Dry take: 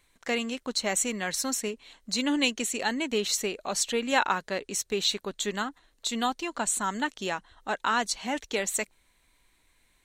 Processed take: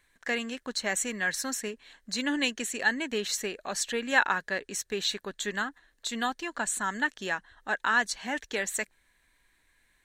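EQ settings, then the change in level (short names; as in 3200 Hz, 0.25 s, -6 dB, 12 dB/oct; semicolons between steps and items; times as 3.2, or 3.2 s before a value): bell 1700 Hz +12.5 dB 0.32 oct; -3.5 dB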